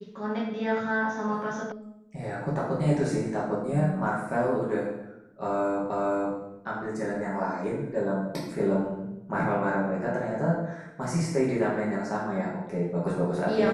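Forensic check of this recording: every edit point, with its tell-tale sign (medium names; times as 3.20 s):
1.72 s: sound stops dead
5.90 s: repeat of the last 0.47 s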